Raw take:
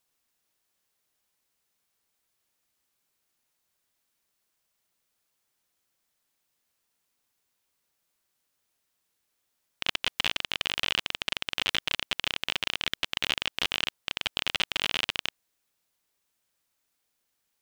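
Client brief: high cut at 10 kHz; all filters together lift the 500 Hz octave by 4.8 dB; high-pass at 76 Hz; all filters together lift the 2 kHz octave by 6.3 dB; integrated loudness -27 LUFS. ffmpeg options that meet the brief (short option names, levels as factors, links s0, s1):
-af "highpass=76,lowpass=10000,equalizer=f=500:t=o:g=5.5,equalizer=f=2000:t=o:g=8,volume=0.794"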